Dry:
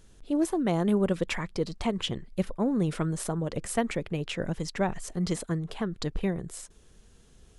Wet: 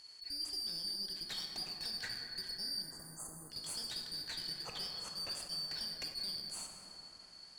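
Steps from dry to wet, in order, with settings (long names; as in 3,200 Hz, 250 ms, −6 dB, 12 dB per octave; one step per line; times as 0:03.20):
band-splitting scrambler in four parts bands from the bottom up 4321
0:04.56–0:05.35: bass and treble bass −2 dB, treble −8 dB
brickwall limiter −21.5 dBFS, peak gain reduction 9.5 dB
downward compressor 3 to 1, threshold −39 dBFS, peak gain reduction 10.5 dB
asymmetric clip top −40 dBFS
0:02.82–0:03.50: linear-phase brick-wall band-stop 1,400–6,200 Hz
dense smooth reverb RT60 4.1 s, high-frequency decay 0.3×, DRR 0 dB
level that may rise only so fast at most 210 dB per second
level −2 dB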